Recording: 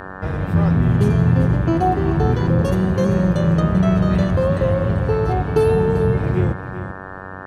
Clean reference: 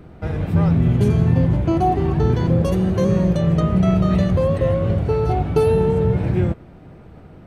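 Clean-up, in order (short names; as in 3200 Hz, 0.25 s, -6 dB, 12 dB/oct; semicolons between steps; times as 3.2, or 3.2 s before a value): de-hum 94.6 Hz, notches 19; inverse comb 0.39 s -11.5 dB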